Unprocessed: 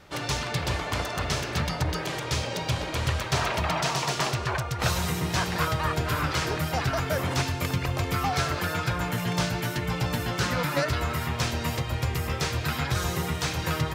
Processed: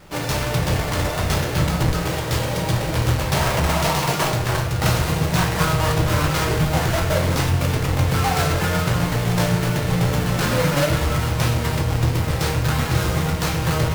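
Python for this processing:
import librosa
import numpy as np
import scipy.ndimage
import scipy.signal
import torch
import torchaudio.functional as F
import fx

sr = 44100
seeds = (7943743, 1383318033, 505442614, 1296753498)

y = fx.halfwave_hold(x, sr)
y = fx.vibrato(y, sr, rate_hz=6.4, depth_cents=7.9)
y = fx.room_shoebox(y, sr, seeds[0], volume_m3=100.0, walls='mixed', distance_m=0.62)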